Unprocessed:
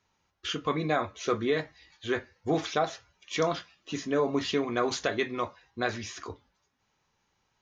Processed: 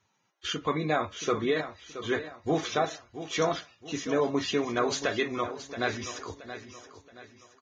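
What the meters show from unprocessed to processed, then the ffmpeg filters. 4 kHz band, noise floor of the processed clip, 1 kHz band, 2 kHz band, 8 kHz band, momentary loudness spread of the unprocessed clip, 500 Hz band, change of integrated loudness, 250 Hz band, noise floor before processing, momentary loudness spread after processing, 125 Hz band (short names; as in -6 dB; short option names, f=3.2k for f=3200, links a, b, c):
+1.0 dB, -73 dBFS, +0.5 dB, +1.0 dB, n/a, 12 LU, +0.5 dB, +0.5 dB, +0.5 dB, -76 dBFS, 13 LU, 0.0 dB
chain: -af "aecho=1:1:675|1350|2025|2700:0.251|0.098|0.0382|0.0149" -ar 22050 -c:a libvorbis -b:a 16k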